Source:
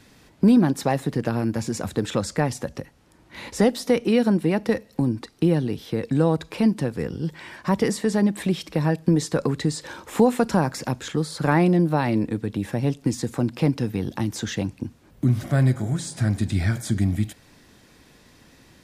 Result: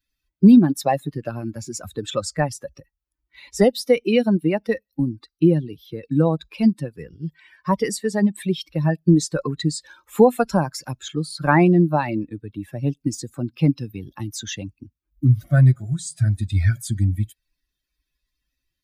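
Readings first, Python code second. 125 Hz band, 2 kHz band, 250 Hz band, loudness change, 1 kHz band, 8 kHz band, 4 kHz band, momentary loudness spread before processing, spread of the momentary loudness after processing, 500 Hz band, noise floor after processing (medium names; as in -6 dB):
+3.0 dB, +1.5 dB, +2.0 dB, +3.0 dB, +2.5 dB, +2.0 dB, +1.0 dB, 9 LU, 17 LU, +2.0 dB, -82 dBFS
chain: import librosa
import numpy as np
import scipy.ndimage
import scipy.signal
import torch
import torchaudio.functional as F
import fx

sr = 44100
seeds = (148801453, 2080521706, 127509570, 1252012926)

y = fx.bin_expand(x, sr, power=2.0)
y = y * librosa.db_to_amplitude(7.5)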